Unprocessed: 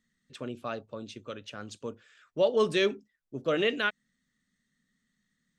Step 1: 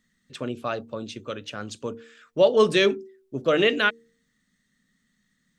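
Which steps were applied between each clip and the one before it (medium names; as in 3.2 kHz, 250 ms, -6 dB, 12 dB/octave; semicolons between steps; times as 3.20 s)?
de-hum 76.68 Hz, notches 6; trim +7 dB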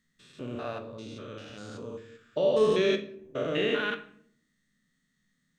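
spectrogram pixelated in time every 200 ms; simulated room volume 88 m³, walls mixed, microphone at 0.35 m; trim -4 dB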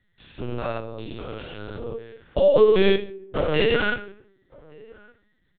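echo from a far wall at 200 m, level -24 dB; LPC vocoder at 8 kHz pitch kept; trim +7.5 dB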